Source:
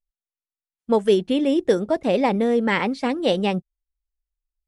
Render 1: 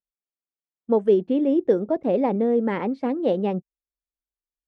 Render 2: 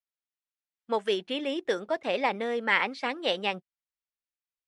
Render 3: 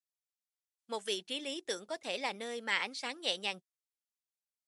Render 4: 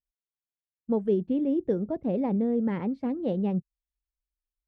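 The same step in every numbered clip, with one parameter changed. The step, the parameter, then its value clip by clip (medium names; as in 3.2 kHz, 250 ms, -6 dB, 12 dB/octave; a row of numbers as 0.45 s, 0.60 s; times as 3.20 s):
band-pass filter, frequency: 350 Hz, 2.1 kHz, 7 kHz, 110 Hz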